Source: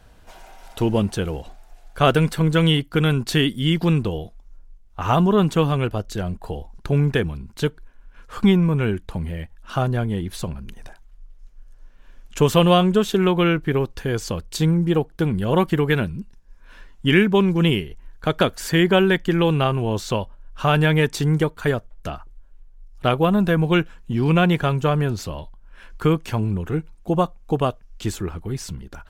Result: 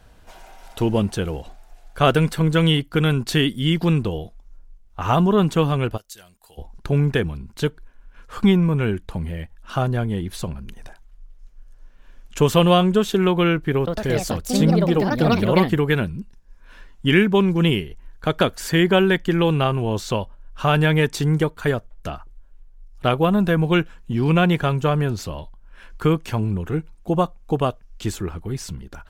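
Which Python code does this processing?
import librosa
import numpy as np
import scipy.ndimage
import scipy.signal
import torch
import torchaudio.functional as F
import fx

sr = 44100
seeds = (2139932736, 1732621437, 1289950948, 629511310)

y = fx.pre_emphasis(x, sr, coefficient=0.97, at=(5.96, 6.57), fade=0.02)
y = fx.echo_pitch(y, sr, ms=102, semitones=4, count=2, db_per_echo=-3.0, at=(13.77, 16.18))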